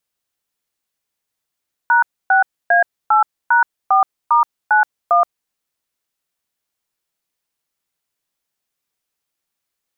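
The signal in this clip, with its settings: DTMF "#6A8#4*91", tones 0.125 s, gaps 0.276 s, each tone -12 dBFS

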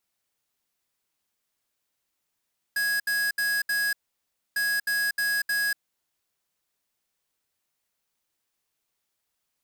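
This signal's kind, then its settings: beep pattern square 1660 Hz, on 0.24 s, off 0.07 s, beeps 4, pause 0.63 s, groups 2, -25.5 dBFS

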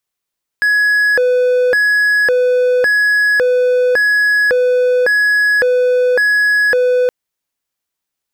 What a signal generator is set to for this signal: siren hi-lo 499–1680 Hz 0.9/s triangle -7.5 dBFS 6.47 s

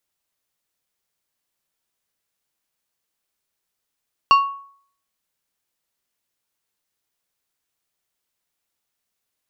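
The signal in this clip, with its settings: glass hit plate, lowest mode 1110 Hz, decay 0.56 s, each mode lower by 8.5 dB, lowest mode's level -7 dB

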